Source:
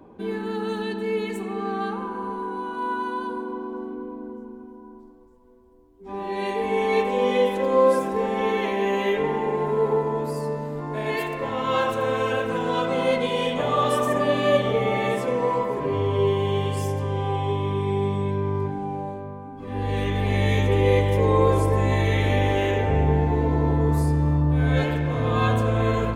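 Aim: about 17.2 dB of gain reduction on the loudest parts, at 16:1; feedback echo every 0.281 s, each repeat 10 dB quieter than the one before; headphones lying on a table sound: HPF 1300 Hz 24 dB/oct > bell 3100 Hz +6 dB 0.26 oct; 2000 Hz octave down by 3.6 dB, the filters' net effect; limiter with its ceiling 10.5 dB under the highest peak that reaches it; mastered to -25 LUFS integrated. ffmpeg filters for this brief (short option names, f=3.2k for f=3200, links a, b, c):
-af "equalizer=f=2k:t=o:g=-4.5,acompressor=threshold=-31dB:ratio=16,alimiter=level_in=9dB:limit=-24dB:level=0:latency=1,volume=-9dB,highpass=f=1.3k:w=0.5412,highpass=f=1.3k:w=1.3066,equalizer=f=3.1k:t=o:w=0.26:g=6,aecho=1:1:281|562|843|1124:0.316|0.101|0.0324|0.0104,volume=26.5dB"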